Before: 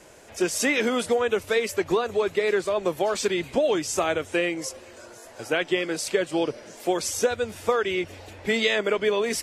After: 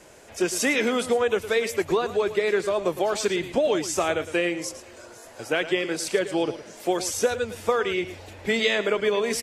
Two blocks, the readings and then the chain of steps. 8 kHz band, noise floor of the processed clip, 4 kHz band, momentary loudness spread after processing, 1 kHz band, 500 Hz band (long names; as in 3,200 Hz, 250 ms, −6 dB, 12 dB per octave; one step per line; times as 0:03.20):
0.0 dB, −46 dBFS, 0.0 dB, 10 LU, 0.0 dB, 0.0 dB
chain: single-tap delay 110 ms −13 dB